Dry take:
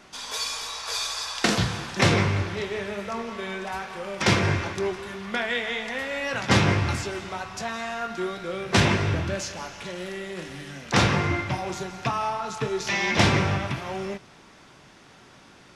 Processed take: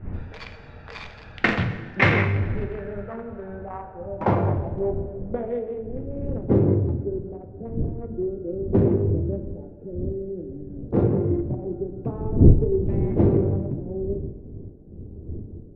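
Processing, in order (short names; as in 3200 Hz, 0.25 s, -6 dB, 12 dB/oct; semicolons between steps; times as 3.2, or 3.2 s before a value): Wiener smoothing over 41 samples; wind noise 120 Hz -30 dBFS; low-pass sweep 2100 Hz -> 400 Hz, 2.19–5.99; two-slope reverb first 0.95 s, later 2.8 s, DRR 7 dB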